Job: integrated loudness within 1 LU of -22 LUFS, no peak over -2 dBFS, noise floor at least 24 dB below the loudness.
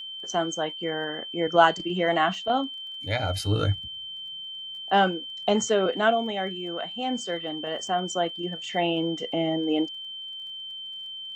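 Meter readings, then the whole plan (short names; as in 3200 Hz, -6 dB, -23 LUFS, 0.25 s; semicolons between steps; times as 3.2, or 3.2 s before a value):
ticks 24/s; steady tone 3100 Hz; tone level -35 dBFS; loudness -27.0 LUFS; peak -4.0 dBFS; loudness target -22.0 LUFS
-> de-click; notch 3100 Hz, Q 30; gain +5 dB; limiter -2 dBFS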